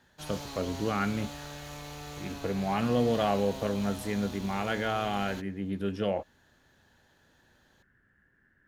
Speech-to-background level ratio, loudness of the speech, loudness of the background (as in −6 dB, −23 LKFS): 11.0 dB, −31.0 LKFS, −42.0 LKFS